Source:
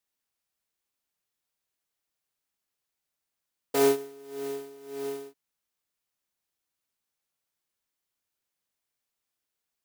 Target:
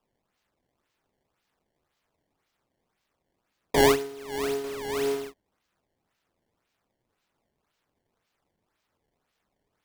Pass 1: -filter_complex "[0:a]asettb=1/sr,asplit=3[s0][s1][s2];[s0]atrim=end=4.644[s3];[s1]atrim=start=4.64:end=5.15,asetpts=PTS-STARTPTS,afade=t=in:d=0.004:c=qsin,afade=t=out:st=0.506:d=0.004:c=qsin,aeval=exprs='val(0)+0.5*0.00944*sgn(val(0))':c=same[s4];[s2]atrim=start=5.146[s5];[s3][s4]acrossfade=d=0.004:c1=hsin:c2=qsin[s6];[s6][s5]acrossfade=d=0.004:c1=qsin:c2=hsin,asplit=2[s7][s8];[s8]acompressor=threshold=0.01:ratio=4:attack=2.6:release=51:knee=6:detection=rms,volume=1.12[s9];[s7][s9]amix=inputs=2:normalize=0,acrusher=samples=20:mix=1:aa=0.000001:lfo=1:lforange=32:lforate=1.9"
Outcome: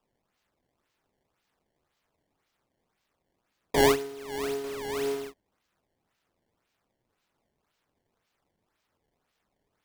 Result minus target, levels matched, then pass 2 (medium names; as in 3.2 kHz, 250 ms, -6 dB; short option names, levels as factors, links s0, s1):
compression: peak gain reduction +8.5 dB
-filter_complex "[0:a]asettb=1/sr,asplit=3[s0][s1][s2];[s0]atrim=end=4.644[s3];[s1]atrim=start=4.64:end=5.15,asetpts=PTS-STARTPTS,afade=t=in:d=0.004:c=qsin,afade=t=out:st=0.506:d=0.004:c=qsin,aeval=exprs='val(0)+0.5*0.00944*sgn(val(0))':c=same[s4];[s2]atrim=start=5.146[s5];[s3][s4]acrossfade=d=0.004:c1=hsin:c2=qsin[s6];[s6][s5]acrossfade=d=0.004:c1=qsin:c2=hsin,asplit=2[s7][s8];[s8]acompressor=threshold=0.0376:ratio=4:attack=2.6:release=51:knee=6:detection=rms,volume=1.12[s9];[s7][s9]amix=inputs=2:normalize=0,acrusher=samples=20:mix=1:aa=0.000001:lfo=1:lforange=32:lforate=1.9"